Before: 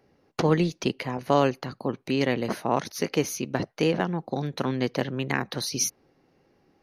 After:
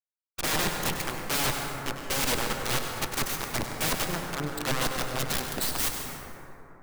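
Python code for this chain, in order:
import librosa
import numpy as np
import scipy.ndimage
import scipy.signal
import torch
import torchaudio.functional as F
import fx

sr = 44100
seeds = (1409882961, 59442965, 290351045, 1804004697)

p1 = fx.bin_expand(x, sr, power=3.0)
p2 = fx.dynamic_eq(p1, sr, hz=280.0, q=2.2, threshold_db=-40.0, ratio=4.0, max_db=3)
p3 = fx.leveller(p2, sr, passes=3)
p4 = 10.0 ** (-27.0 / 20.0) * (np.abs((p3 / 10.0 ** (-27.0 / 20.0) + 3.0) % 4.0 - 2.0) - 1.0)
p5 = p3 + F.gain(torch.from_numpy(p4), -6.0).numpy()
p6 = fx.cheby_harmonics(p5, sr, harmonics=(2, 4, 7), levels_db=(-25, -14, -16), full_scale_db=-11.0)
p7 = (np.mod(10.0 ** (27.0 / 20.0) * p6 + 1.0, 2.0) - 1.0) / 10.0 ** (27.0 / 20.0)
p8 = p7 + fx.echo_single(p7, sr, ms=98, db=-10.5, dry=0)
p9 = fx.rev_plate(p8, sr, seeds[0], rt60_s=3.5, hf_ratio=0.3, predelay_ms=115, drr_db=3.5)
y = F.gain(torch.from_numpy(p9), 4.5).numpy()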